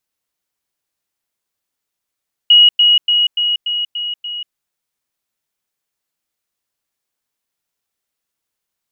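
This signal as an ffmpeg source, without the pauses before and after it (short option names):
-f lavfi -i "aevalsrc='pow(10,(-4-3*floor(t/0.29))/20)*sin(2*PI*2900*t)*clip(min(mod(t,0.29),0.19-mod(t,0.29))/0.005,0,1)':d=2.03:s=44100"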